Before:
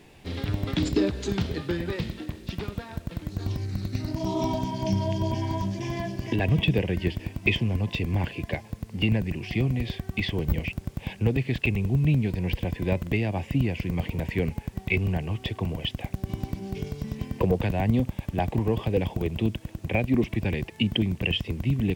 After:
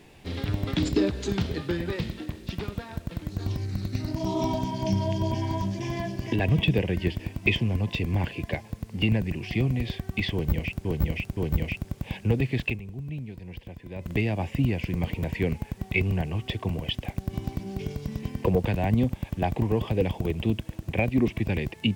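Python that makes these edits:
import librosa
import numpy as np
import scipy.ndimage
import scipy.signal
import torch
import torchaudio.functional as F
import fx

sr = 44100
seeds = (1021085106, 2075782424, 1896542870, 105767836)

y = fx.edit(x, sr, fx.repeat(start_s=10.33, length_s=0.52, count=3),
    fx.fade_down_up(start_s=11.6, length_s=1.48, db=-13.0, fade_s=0.15), tone=tone)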